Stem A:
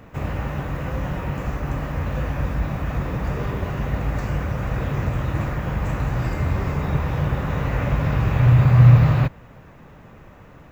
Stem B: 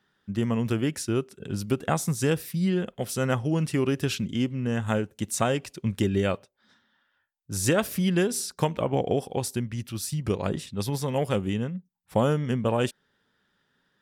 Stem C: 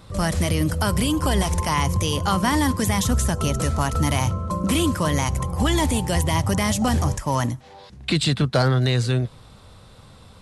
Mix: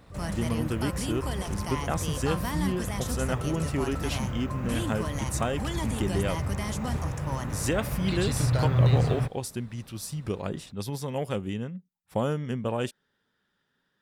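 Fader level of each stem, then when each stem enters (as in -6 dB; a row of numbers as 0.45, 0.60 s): -11.0, -4.5, -12.5 dB; 0.00, 0.00, 0.00 s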